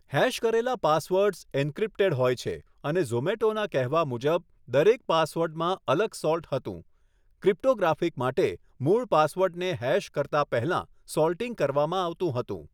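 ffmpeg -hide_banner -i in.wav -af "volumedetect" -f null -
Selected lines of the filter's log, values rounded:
mean_volume: -26.4 dB
max_volume: -8.7 dB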